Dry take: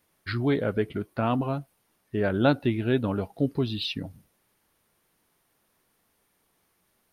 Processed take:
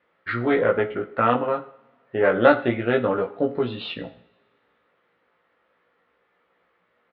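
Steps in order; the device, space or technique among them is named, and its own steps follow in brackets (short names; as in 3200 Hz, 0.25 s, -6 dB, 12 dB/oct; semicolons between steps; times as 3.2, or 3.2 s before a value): guitar amplifier (tube stage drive 13 dB, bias 0.7; tone controls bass -4 dB, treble -10 dB; speaker cabinet 89–3600 Hz, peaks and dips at 99 Hz -5 dB, 140 Hz -7 dB, 270 Hz -4 dB, 510 Hz +8 dB, 1300 Hz +7 dB, 1900 Hz +5 dB); doubler 17 ms -2.5 dB; two-slope reverb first 0.56 s, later 2.5 s, from -26 dB, DRR 9.5 dB; gain +5.5 dB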